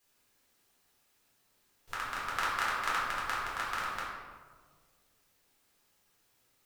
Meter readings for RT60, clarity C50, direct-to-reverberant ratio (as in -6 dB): 1.6 s, 0.0 dB, -8.0 dB